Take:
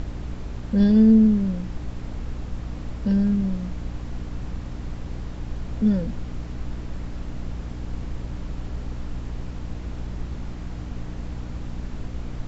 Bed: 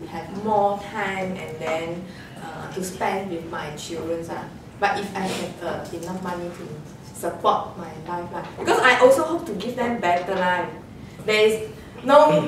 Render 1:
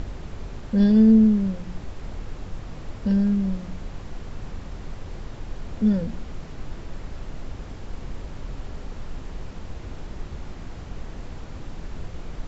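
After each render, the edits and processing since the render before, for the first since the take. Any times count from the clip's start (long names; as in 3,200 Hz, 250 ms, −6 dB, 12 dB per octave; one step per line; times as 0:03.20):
hum removal 60 Hz, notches 5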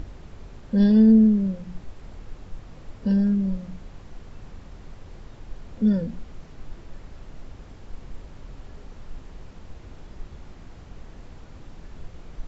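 noise reduction from a noise print 7 dB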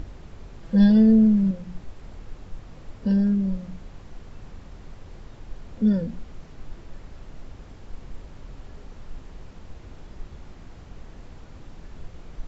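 0:00.60–0:01.51: comb filter 6.1 ms, depth 75%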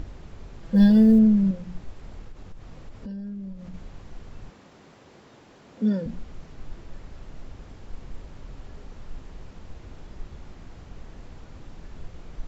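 0:00.75–0:01.19: floating-point word with a short mantissa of 6 bits
0:02.21–0:03.74: downward compressor 5 to 1, threshold −35 dBFS
0:04.50–0:06.06: high-pass filter 210 Hz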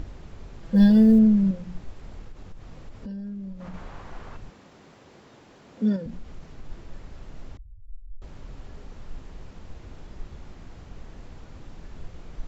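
0:03.60–0:04.37: parametric band 1,100 Hz +11.5 dB 2.3 octaves
0:05.96–0:06.69: downward compressor 2 to 1, threshold −33 dBFS
0:07.57–0:08.22: expanding power law on the bin magnitudes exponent 3.7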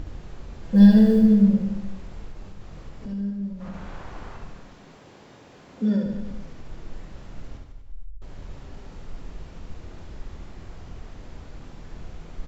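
double-tracking delay 25 ms −10.5 dB
reverse bouncing-ball delay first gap 70 ms, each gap 1.15×, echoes 5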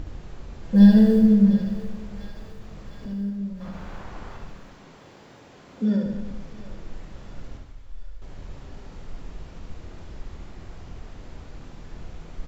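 feedback echo with a high-pass in the loop 701 ms, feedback 73%, high-pass 740 Hz, level −13 dB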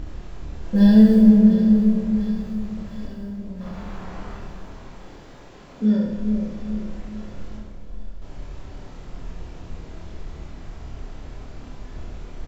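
double-tracking delay 28 ms −2 dB
delay with a low-pass on its return 425 ms, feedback 46%, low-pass 830 Hz, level −5.5 dB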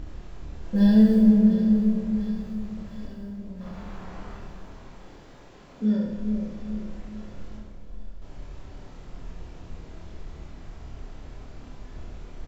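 level −4.5 dB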